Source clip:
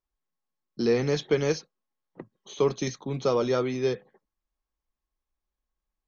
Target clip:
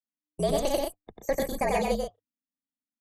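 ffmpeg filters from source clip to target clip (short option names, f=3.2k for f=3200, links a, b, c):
-af "bandreject=f=850:w=5.3,afftdn=nr=17:nf=-46,bandreject=f=50:t=h:w=6,bandreject=f=100:t=h:w=6,bandreject=f=150:t=h:w=6,bandreject=f=200:t=h:w=6,aecho=1:1:186.6|256.6:0.708|0.501,asetrate=89082,aresample=44100,afreqshift=-300,volume=-2.5dB"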